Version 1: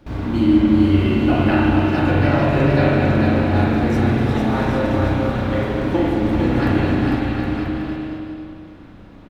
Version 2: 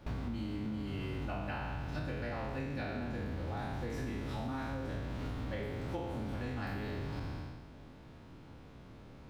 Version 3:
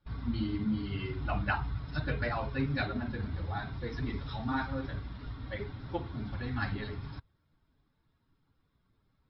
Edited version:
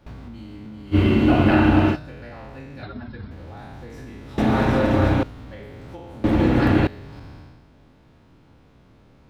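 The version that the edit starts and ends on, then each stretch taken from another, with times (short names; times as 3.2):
2
0.94–1.94 from 1, crossfade 0.06 s
2.83–3.31 from 3
4.38–5.23 from 1
6.24–6.87 from 1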